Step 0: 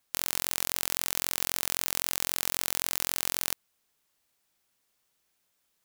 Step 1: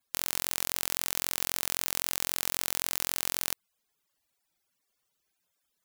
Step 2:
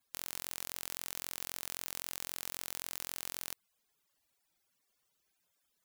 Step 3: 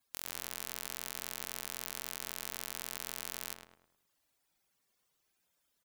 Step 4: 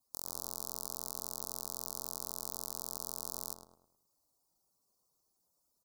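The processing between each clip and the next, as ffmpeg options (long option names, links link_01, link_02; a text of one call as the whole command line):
ffmpeg -i in.wav -af "afftfilt=real='re*gte(hypot(re,im),0.000141)':imag='im*gte(hypot(re,im),0.000141)':win_size=1024:overlap=0.75,volume=-1dB" out.wav
ffmpeg -i in.wav -af "aeval=exprs='(tanh(3.16*val(0)+0.35)-tanh(0.35))/3.16':channel_layout=same,volume=1dB" out.wav
ffmpeg -i in.wav -filter_complex "[0:a]asplit=2[link_01][link_02];[link_02]adelay=105,lowpass=frequency=2100:poles=1,volume=-3.5dB,asplit=2[link_03][link_04];[link_04]adelay=105,lowpass=frequency=2100:poles=1,volume=0.43,asplit=2[link_05][link_06];[link_06]adelay=105,lowpass=frequency=2100:poles=1,volume=0.43,asplit=2[link_07][link_08];[link_08]adelay=105,lowpass=frequency=2100:poles=1,volume=0.43,asplit=2[link_09][link_10];[link_10]adelay=105,lowpass=frequency=2100:poles=1,volume=0.43[link_11];[link_01][link_03][link_05][link_07][link_09][link_11]amix=inputs=6:normalize=0" out.wav
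ffmpeg -i in.wav -af "asuperstop=centerf=2300:order=8:qfactor=0.71,volume=1dB" out.wav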